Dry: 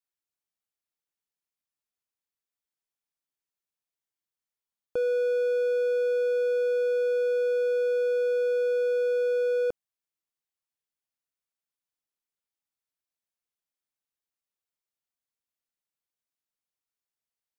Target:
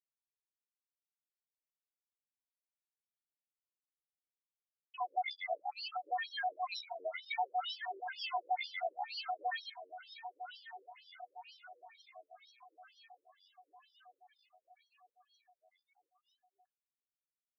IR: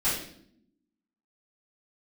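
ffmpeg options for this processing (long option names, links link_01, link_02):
-filter_complex "[0:a]agate=range=-33dB:threshold=-15dB:ratio=3:detection=peak,lowshelf=frequency=300:gain=-9,aecho=1:1:2.4:0.88,bandreject=frequency=112.5:width_type=h:width=4,bandreject=frequency=225:width_type=h:width=4,bandreject=frequency=337.5:width_type=h:width=4,bandreject=frequency=450:width_type=h:width=4,bandreject=frequency=562.5:width_type=h:width=4,bandreject=frequency=675:width_type=h:width=4,bandreject=frequency=787.5:width_type=h:width=4,bandreject=frequency=900:width_type=h:width=4,bandreject=frequency=1012.5:width_type=h:width=4,bandreject=frequency=1125:width_type=h:width=4,bandreject=frequency=1237.5:width_type=h:width=4,bandreject=frequency=1350:width_type=h:width=4,bandreject=frequency=1462.5:width_type=h:width=4,bandreject=frequency=1575:width_type=h:width=4,bandreject=frequency=1687.5:width_type=h:width=4,bandreject=frequency=1800:width_type=h:width=4,bandreject=frequency=1912.5:width_type=h:width=4,bandreject=frequency=2025:width_type=h:width=4,bandreject=frequency=2137.5:width_type=h:width=4,bandreject=frequency=2250:width_type=h:width=4,bandreject=frequency=2362.5:width_type=h:width=4,bandreject=frequency=2475:width_type=h:width=4,bandreject=frequency=2587.5:width_type=h:width=4,bandreject=frequency=2700:width_type=h:width=4,bandreject=frequency=2812.5:width_type=h:width=4,bandreject=frequency=2925:width_type=h:width=4,bandreject=frequency=3037.5:width_type=h:width=4,bandreject=frequency=3150:width_type=h:width=4,bandreject=frequency=3262.5:width_type=h:width=4,bandreject=frequency=3375:width_type=h:width=4,bandreject=frequency=3487.5:width_type=h:width=4,bandreject=frequency=3600:width_type=h:width=4,bandreject=frequency=3712.5:width_type=h:width=4,bandreject=frequency=3825:width_type=h:width=4,bandreject=frequency=3937.5:width_type=h:width=4,bandreject=frequency=4050:width_type=h:width=4,bandreject=frequency=4162.5:width_type=h:width=4,acrusher=samples=37:mix=1:aa=0.000001:lfo=1:lforange=22.2:lforate=0.6,asetrate=66075,aresample=44100,atempo=0.66742,aeval=exprs='0.02*(cos(1*acos(clip(val(0)/0.02,-1,1)))-cos(1*PI/2))+0.00126*(cos(6*acos(clip(val(0)/0.02,-1,1)))-cos(6*PI/2))':channel_layout=same,acrossover=split=950[link_01][link_02];[link_01]aeval=exprs='val(0)*(1-1/2+1/2*cos(2*PI*5.4*n/s))':channel_layout=same[link_03];[link_02]aeval=exprs='val(0)*(1-1/2-1/2*cos(2*PI*5.4*n/s))':channel_layout=same[link_04];[link_03][link_04]amix=inputs=2:normalize=0,aecho=1:1:1160|2320|3480|4640|5800|6960:0.237|0.135|0.077|0.0439|0.025|0.0143,afftfilt=real='re*between(b*sr/1024,390*pow(4200/390,0.5+0.5*sin(2*PI*2.1*pts/sr))/1.41,390*pow(4200/390,0.5+0.5*sin(2*PI*2.1*pts/sr))*1.41)':imag='im*between(b*sr/1024,390*pow(4200/390,0.5+0.5*sin(2*PI*2.1*pts/sr))/1.41,390*pow(4200/390,0.5+0.5*sin(2*PI*2.1*pts/sr))*1.41)':win_size=1024:overlap=0.75,volume=11dB"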